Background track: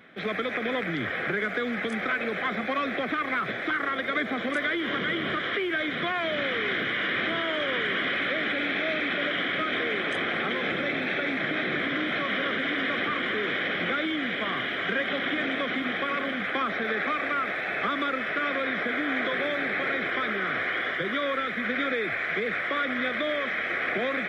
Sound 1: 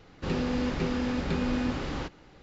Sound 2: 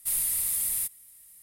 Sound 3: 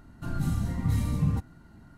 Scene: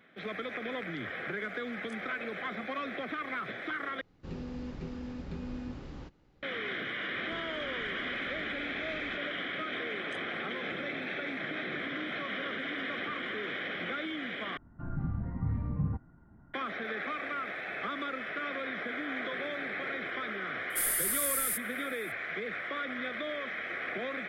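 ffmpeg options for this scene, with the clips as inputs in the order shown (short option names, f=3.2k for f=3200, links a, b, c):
-filter_complex "[1:a]asplit=2[a][b];[0:a]volume=-8.5dB[c];[a]lowshelf=f=390:g=8.5[d];[b]acompressor=threshold=-36dB:ratio=6:attack=3.2:release=140:knee=1:detection=peak[e];[3:a]lowpass=f=1.7k:w=0.5412,lowpass=f=1.7k:w=1.3066[f];[c]asplit=3[g][h][i];[g]atrim=end=4.014[j];[d]atrim=end=2.42,asetpts=PTS-STARTPTS,volume=-17dB[k];[h]atrim=start=6.426:end=14.574[l];[f]atrim=end=1.97,asetpts=PTS-STARTPTS,volume=-6dB[m];[i]atrim=start=16.536[n];[e]atrim=end=2.42,asetpts=PTS-STARTPTS,volume=-11.5dB,afade=t=in:d=0.004:c=hsin,afade=t=out:st=2.416:d=0.004:c=hsin,adelay=7090[o];[2:a]atrim=end=1.42,asetpts=PTS-STARTPTS,volume=-3.5dB,afade=t=in:d=0.004:c=hsin,afade=t=out:st=1.416:d=0.004:c=hsin,adelay=20700[p];[j][k]acrossfade=d=0.004:c1=hsin:c2=hsin[q];[q][l]acrossfade=d=0.004:c1=hsin:c2=hsin[r];[r][m]acrossfade=d=0.004:c1=hsin:c2=hsin[s];[s][n]acrossfade=d=0.004:c1=hsin:c2=hsin[t];[t][o][p]amix=inputs=3:normalize=0"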